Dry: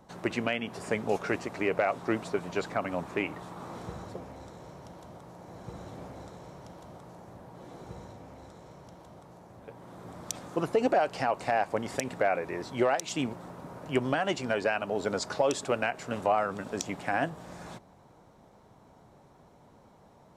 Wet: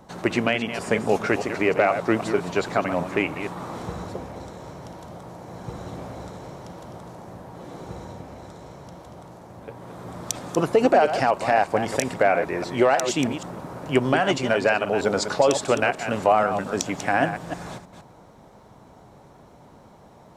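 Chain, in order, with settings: chunks repeated in reverse 158 ms, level -9 dB; trim +7.5 dB

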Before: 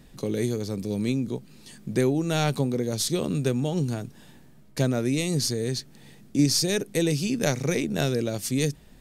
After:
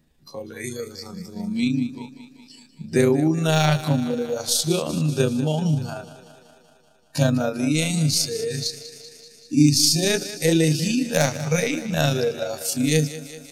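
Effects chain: spectral noise reduction 17 dB; wavefolder -11 dBFS; thinning echo 130 ms, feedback 69%, high-pass 210 Hz, level -14 dB; granular stretch 1.5×, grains 76 ms; trim +6.5 dB

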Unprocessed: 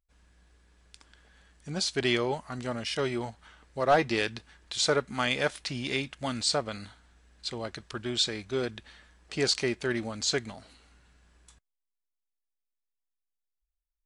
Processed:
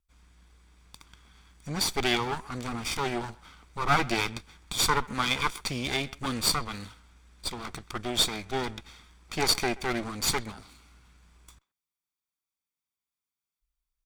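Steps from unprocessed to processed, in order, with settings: comb filter that takes the minimum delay 0.86 ms; speakerphone echo 130 ms, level -21 dB; trim +4 dB

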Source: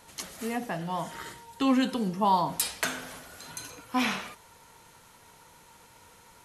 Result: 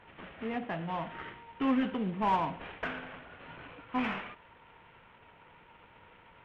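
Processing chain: CVSD coder 16 kbps; in parallel at -7 dB: saturation -31 dBFS, distortion -6 dB; on the sum: trim -5 dB

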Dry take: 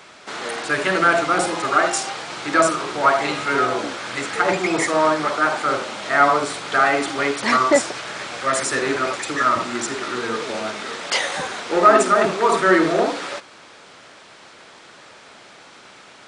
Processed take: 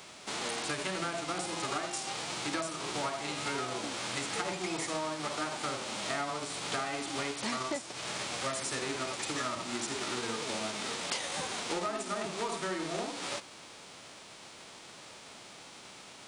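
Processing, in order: formants flattened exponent 0.6; peaking EQ 1.6 kHz -5 dB 0.66 oct; compression 12:1, threshold -27 dBFS, peak gain reduction 18.5 dB; trim -4.5 dB

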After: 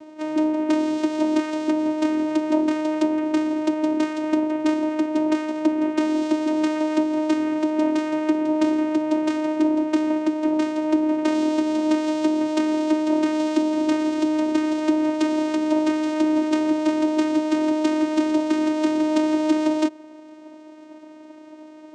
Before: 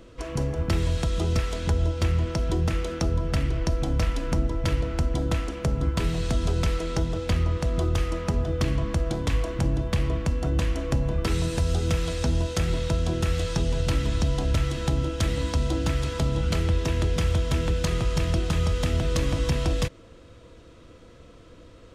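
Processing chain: vocoder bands 4, saw 309 Hz; trim +8 dB

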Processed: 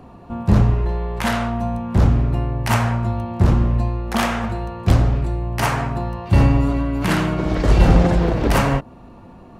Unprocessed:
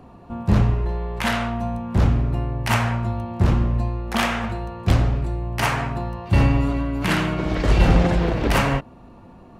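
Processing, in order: dynamic bell 2.6 kHz, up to -5 dB, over -38 dBFS, Q 0.86; trim +3 dB

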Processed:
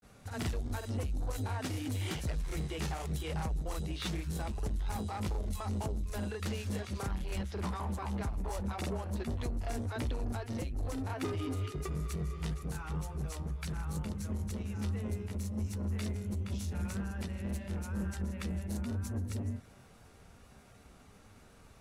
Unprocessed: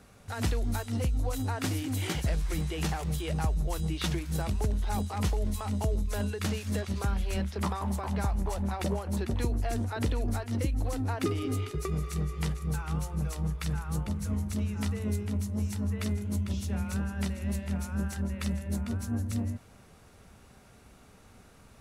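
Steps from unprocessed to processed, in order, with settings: saturation -28.5 dBFS, distortion -13 dB; granulator 121 ms, spray 27 ms, pitch spread up and down by 0 st

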